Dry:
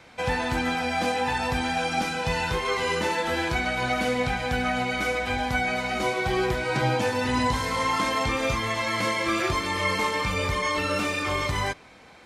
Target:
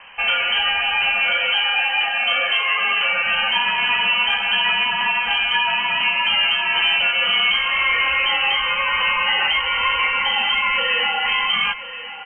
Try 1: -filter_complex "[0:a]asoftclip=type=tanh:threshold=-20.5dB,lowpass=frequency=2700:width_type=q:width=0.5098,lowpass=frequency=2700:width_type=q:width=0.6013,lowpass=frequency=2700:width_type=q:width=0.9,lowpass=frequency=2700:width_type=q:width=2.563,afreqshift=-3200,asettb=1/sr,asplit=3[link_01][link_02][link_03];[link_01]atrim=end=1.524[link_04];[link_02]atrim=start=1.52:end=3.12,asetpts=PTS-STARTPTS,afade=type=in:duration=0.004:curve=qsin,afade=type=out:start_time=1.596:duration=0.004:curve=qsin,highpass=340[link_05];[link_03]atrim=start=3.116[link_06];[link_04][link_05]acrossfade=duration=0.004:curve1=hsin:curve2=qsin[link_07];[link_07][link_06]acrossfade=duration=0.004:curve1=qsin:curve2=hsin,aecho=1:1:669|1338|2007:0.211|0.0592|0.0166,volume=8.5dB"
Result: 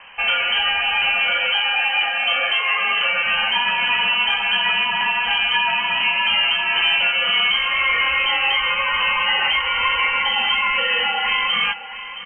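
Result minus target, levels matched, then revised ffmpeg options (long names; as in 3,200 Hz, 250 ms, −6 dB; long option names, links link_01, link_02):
echo 365 ms early
-filter_complex "[0:a]asoftclip=type=tanh:threshold=-20.5dB,lowpass=frequency=2700:width_type=q:width=0.5098,lowpass=frequency=2700:width_type=q:width=0.6013,lowpass=frequency=2700:width_type=q:width=0.9,lowpass=frequency=2700:width_type=q:width=2.563,afreqshift=-3200,asettb=1/sr,asplit=3[link_01][link_02][link_03];[link_01]atrim=end=1.524[link_04];[link_02]atrim=start=1.52:end=3.12,asetpts=PTS-STARTPTS,afade=type=in:duration=0.004:curve=qsin,afade=type=out:start_time=1.596:duration=0.004:curve=qsin,highpass=340[link_05];[link_03]atrim=start=3.116[link_06];[link_04][link_05]acrossfade=duration=0.004:curve1=hsin:curve2=qsin[link_07];[link_07][link_06]acrossfade=duration=0.004:curve1=qsin:curve2=hsin,aecho=1:1:1034|2068|3102:0.211|0.0592|0.0166,volume=8.5dB"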